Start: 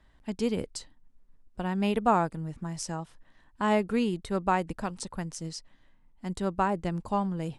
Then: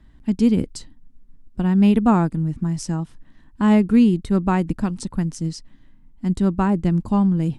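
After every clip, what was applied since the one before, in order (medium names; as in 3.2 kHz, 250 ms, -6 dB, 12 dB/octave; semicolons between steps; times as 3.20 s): resonant low shelf 380 Hz +9 dB, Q 1.5; trim +3 dB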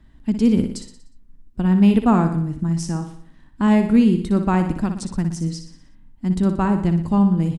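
feedback delay 60 ms, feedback 52%, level -8.5 dB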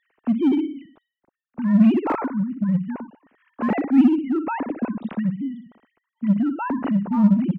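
formants replaced by sine waves; in parallel at -4 dB: hard clipper -17.5 dBFS, distortion -5 dB; on the sum: trim -5 dB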